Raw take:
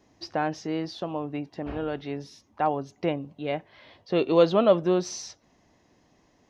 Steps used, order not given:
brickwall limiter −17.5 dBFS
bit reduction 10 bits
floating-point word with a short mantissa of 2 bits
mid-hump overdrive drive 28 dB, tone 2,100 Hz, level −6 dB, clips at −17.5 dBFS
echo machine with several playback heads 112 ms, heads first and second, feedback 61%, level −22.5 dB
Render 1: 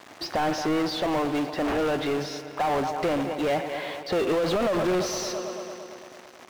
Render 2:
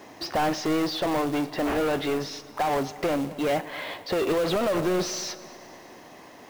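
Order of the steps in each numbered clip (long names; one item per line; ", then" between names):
floating-point word with a short mantissa, then bit reduction, then echo machine with several playback heads, then mid-hump overdrive, then brickwall limiter
mid-hump overdrive, then bit reduction, then echo machine with several playback heads, then floating-point word with a short mantissa, then brickwall limiter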